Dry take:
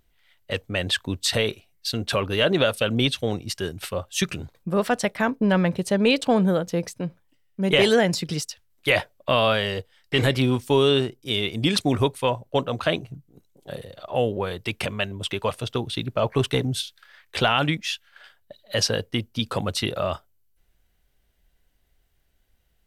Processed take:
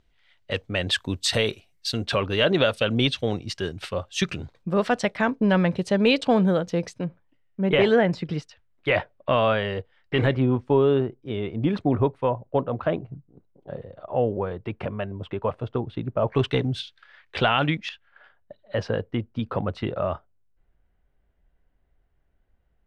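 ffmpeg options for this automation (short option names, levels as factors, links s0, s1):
-af "asetnsamples=n=441:p=0,asendcmd='0.91 lowpass f 8700;2.05 lowpass f 5200;7.04 lowpass f 2100;10.35 lowpass f 1200;16.28 lowpass f 3200;17.89 lowpass f 1500',lowpass=5200"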